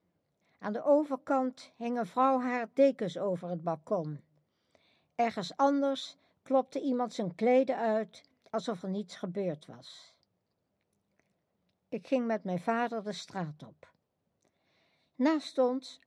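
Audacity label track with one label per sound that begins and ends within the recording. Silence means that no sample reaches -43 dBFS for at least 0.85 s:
5.190000	9.960000	sound
11.920000	13.830000	sound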